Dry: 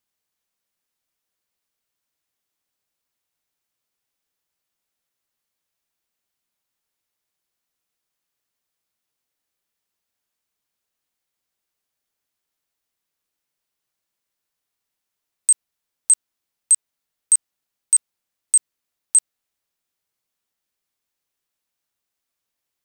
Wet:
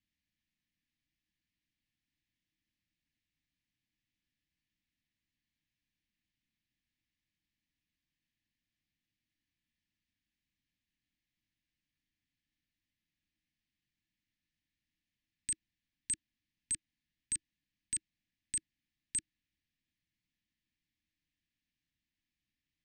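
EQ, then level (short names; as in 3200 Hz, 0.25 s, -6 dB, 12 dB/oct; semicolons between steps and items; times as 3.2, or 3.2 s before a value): Chebyshev band-stop 320–1700 Hz, order 5; air absorption 180 m; low shelf 290 Hz +7.5 dB; 0.0 dB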